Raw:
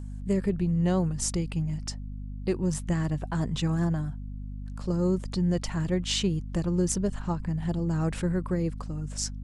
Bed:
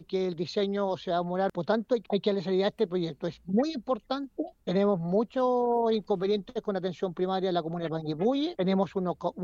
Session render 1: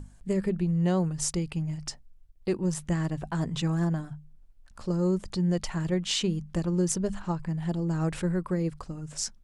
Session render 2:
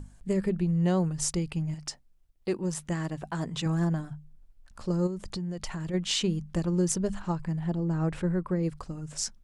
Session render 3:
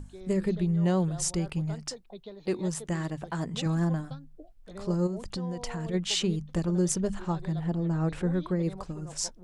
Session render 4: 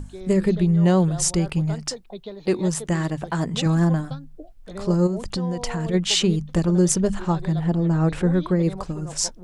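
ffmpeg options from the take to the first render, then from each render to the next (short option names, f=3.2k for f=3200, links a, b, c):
-af "bandreject=f=50:t=h:w=6,bandreject=f=100:t=h:w=6,bandreject=f=150:t=h:w=6,bandreject=f=200:t=h:w=6,bandreject=f=250:t=h:w=6"
-filter_complex "[0:a]asettb=1/sr,asplit=3[a][b][c];[a]atrim=end=1.744[d];[b]atrim=start=1.74:end=3.66,asetpts=PTS-STARTPTS,afade=t=in:d=0.004:c=qsin,afade=t=out:st=1.916:d=0.004:c=qsin,lowshelf=f=130:g=-10.5[e];[c]atrim=start=3.656[f];[d][e]acrossfade=d=0.004:c1=hsin:c2=qsin[g];[g][f]acrossfade=d=0.004:c1=qsin:c2=hsin,asplit=3[h][i][j];[h]afade=t=out:st=5.06:d=0.02[k];[i]acompressor=threshold=-30dB:ratio=10:attack=3.2:release=140:knee=1:detection=peak,afade=t=in:st=5.06:d=0.02,afade=t=out:st=5.93:d=0.02[l];[j]afade=t=in:st=5.93:d=0.02[m];[k][l][m]amix=inputs=3:normalize=0,asettb=1/sr,asplit=3[n][o][p];[n]atrim=end=7.594[q];[o]atrim=start=7.59:end=8.63,asetpts=PTS-STARTPTS,afade=t=in:d=0.004:c=qsin,afade=t=out:st=1.036:d=0.004:c=qsin,highshelf=f=3.4k:g=-11[r];[p]atrim=start=8.626[s];[q][r]acrossfade=d=0.004:c1=hsin:c2=qsin[t];[t][s]acrossfade=d=0.004:c1=qsin:c2=hsin"
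-filter_complex "[1:a]volume=-17.5dB[a];[0:a][a]amix=inputs=2:normalize=0"
-af "volume=8dB"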